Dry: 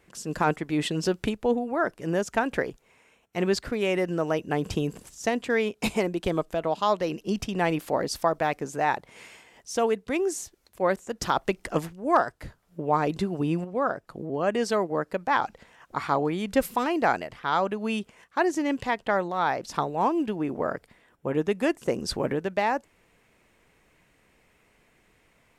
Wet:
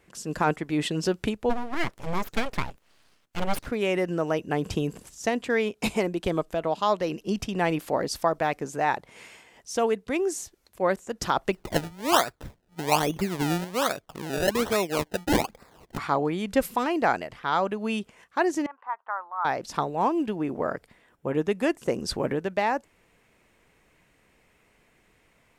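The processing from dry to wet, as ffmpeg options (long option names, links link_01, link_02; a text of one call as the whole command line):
ffmpeg -i in.wav -filter_complex "[0:a]asplit=3[link_01][link_02][link_03];[link_01]afade=type=out:start_time=1.49:duration=0.02[link_04];[link_02]aeval=exprs='abs(val(0))':channel_layout=same,afade=type=in:start_time=1.49:duration=0.02,afade=type=out:start_time=3.65:duration=0.02[link_05];[link_03]afade=type=in:start_time=3.65:duration=0.02[link_06];[link_04][link_05][link_06]amix=inputs=3:normalize=0,asplit=3[link_07][link_08][link_09];[link_07]afade=type=out:start_time=11.52:duration=0.02[link_10];[link_08]acrusher=samples=28:mix=1:aa=0.000001:lfo=1:lforange=28:lforate=1.2,afade=type=in:start_time=11.52:duration=0.02,afade=type=out:start_time=15.97:duration=0.02[link_11];[link_09]afade=type=in:start_time=15.97:duration=0.02[link_12];[link_10][link_11][link_12]amix=inputs=3:normalize=0,asettb=1/sr,asplit=3[link_13][link_14][link_15];[link_13]atrim=end=18.664[link_16];[link_14]atrim=start=18.66:end=19.45,asetpts=PTS-STARTPTS,afade=type=in:duration=0.004:curve=qsin,afade=type=out:start_time=0.786:duration=0.004:curve=qsin,asuperpass=centerf=1100:order=4:qfactor=2.1[link_17];[link_15]atrim=start=19.446[link_18];[link_16][link_17]acrossfade=duration=0.004:curve1=hsin:curve2=qsin[link_19];[link_19][link_18]acrossfade=duration=0.004:curve1=qsin:curve2=hsin" out.wav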